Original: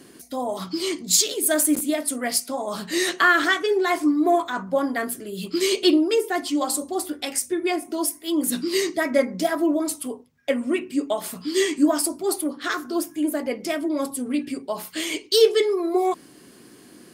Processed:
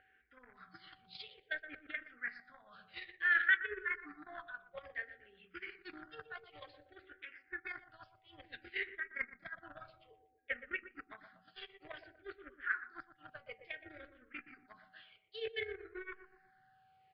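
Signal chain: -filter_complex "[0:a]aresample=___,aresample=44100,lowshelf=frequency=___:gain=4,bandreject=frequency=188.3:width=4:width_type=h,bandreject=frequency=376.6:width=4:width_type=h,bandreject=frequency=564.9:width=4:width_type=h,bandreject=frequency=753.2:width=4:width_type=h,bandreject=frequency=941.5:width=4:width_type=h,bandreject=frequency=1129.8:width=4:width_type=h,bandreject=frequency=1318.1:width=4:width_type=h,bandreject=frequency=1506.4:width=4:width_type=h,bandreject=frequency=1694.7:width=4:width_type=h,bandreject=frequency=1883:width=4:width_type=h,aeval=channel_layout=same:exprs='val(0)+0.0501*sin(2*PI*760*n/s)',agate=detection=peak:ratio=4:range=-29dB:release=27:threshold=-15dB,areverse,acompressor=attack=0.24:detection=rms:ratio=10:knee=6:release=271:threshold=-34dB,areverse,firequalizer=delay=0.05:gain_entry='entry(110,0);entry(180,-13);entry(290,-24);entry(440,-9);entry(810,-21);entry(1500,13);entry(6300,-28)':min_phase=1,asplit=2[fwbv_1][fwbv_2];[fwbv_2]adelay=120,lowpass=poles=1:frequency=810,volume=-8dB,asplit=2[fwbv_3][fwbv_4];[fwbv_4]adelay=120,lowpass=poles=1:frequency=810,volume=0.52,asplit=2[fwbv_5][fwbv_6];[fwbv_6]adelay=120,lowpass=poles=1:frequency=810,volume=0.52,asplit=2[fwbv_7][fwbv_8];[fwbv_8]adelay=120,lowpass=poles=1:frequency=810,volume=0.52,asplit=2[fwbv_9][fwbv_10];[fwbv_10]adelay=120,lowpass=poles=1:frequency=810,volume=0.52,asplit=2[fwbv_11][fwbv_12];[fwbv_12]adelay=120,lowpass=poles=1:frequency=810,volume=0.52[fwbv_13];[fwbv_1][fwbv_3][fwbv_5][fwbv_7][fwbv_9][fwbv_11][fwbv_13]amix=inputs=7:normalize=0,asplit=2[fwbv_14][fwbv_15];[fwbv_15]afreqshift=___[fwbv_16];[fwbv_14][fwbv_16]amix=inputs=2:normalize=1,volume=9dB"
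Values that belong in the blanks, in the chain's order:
11025, 250, -0.57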